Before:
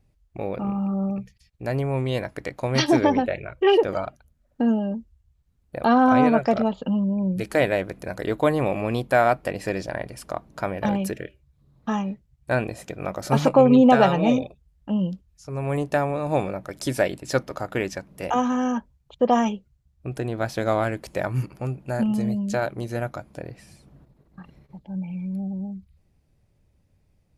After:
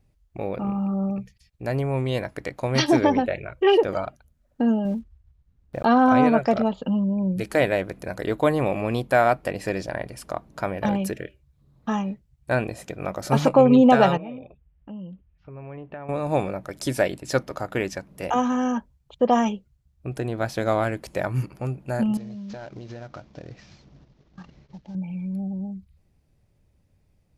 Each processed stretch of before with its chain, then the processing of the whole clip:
0:04.85–0:05.85: one scale factor per block 5 bits + low-pass filter 2,500 Hz 6 dB per octave + low-shelf EQ 200 Hz +5.5 dB
0:14.17–0:16.09: Butterworth low-pass 3,000 Hz + downward compressor 2.5 to 1, threshold −41 dBFS
0:22.17–0:24.95: variable-slope delta modulation 32 kbit/s + downward compressor 12 to 1, threshold −33 dBFS
whole clip: no processing

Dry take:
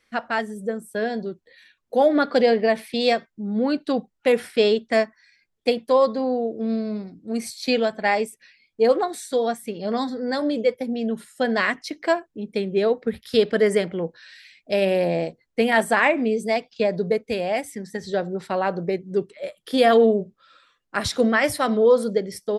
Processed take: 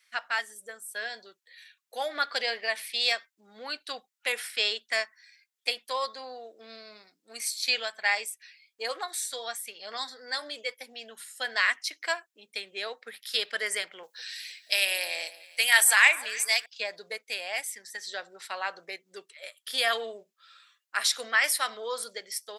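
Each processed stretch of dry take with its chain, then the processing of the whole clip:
0:14.03–0:16.66: spectral tilt +3.5 dB per octave + delay that swaps between a low-pass and a high-pass 155 ms, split 1,300 Hz, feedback 50%, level −13.5 dB
whole clip: high-pass filter 1,500 Hz 12 dB per octave; high-shelf EQ 5,700 Hz +6.5 dB

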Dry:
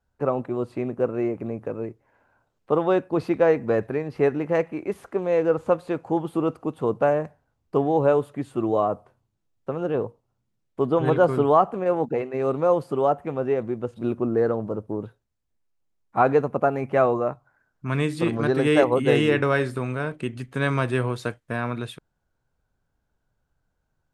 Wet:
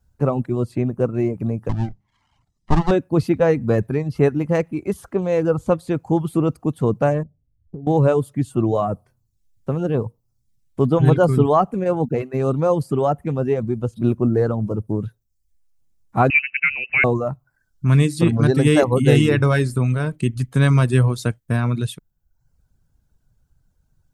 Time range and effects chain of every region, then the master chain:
0:01.69–0:02.91: lower of the sound and its delayed copy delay 1 ms + low-pass filter 6,800 Hz + mains-hum notches 50/100/150/200 Hz
0:07.23–0:07.87: Gaussian smoothing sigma 18 samples + downward compressor 12 to 1, threshold −37 dBFS
0:16.30–0:17.04: voice inversion scrambler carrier 2,800 Hz + high-pass filter 120 Hz 6 dB per octave + dynamic equaliser 1,000 Hz, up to −5 dB, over −39 dBFS, Q 1.9
whole clip: bass and treble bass +14 dB, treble +11 dB; reverb reduction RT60 0.63 s; level +1 dB

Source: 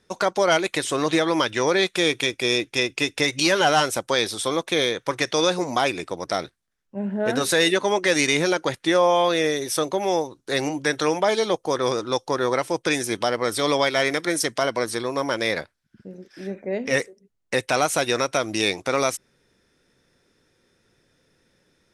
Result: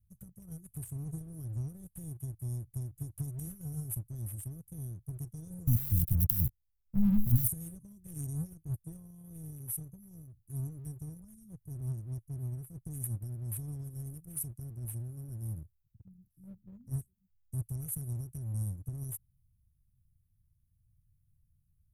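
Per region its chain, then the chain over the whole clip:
0:05.67–0:07.48: flat-topped bell 3,600 Hz +12 dB + compressor whose output falls as the input rises −25 dBFS + leveller curve on the samples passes 3
whole clip: inverse Chebyshev band-stop filter 440–4,600 Hz, stop band 70 dB; parametric band 890 Hz +13 dB 0.85 octaves; leveller curve on the samples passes 1; level +7 dB

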